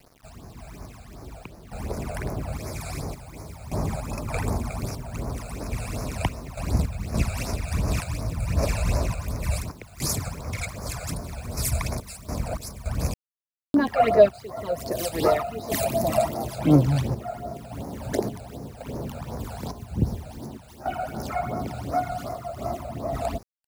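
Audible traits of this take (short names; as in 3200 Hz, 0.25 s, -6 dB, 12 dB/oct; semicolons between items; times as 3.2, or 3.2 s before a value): random-step tremolo, depth 85%; a quantiser's noise floor 10-bit, dither none; phasing stages 12, 2.7 Hz, lowest notch 310–3200 Hz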